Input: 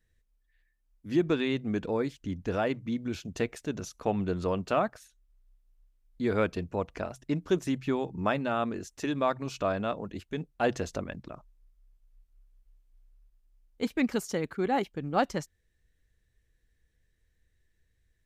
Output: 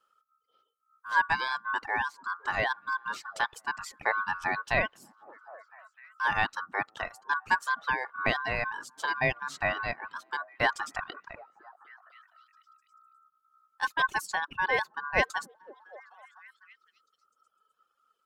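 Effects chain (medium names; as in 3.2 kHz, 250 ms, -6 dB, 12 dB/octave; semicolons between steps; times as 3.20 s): ring modulator 1.3 kHz; repeats whose band climbs or falls 253 ms, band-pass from 230 Hz, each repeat 0.7 oct, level -11.5 dB; reverb removal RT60 1.3 s; trim +3.5 dB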